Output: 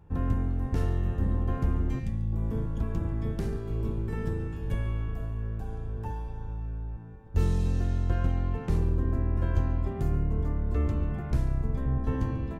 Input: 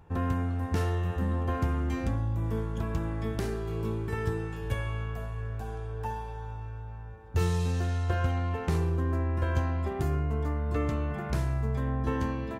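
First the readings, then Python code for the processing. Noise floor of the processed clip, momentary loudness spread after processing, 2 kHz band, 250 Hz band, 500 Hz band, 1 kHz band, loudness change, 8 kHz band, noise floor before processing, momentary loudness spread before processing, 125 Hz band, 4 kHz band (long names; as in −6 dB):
−38 dBFS, 8 LU, −6.5 dB, 0.0 dB, −3.5 dB, −6.0 dB, +0.5 dB, can't be measured, −39 dBFS, 8 LU, +0.5 dB, −7.0 dB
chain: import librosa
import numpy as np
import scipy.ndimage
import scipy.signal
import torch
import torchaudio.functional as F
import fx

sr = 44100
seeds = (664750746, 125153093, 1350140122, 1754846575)

y = fx.octave_divider(x, sr, octaves=1, level_db=1.0)
y = fx.low_shelf(y, sr, hz=430.0, db=6.5)
y = y + 10.0 ** (-18.0 / 20.0) * np.pad(y, (int(142 * sr / 1000.0), 0))[:len(y)]
y = fx.spec_box(y, sr, start_s=1.99, length_s=0.34, low_hz=230.0, high_hz=1700.0, gain_db=-10)
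y = F.gain(torch.from_numpy(y), -7.0).numpy()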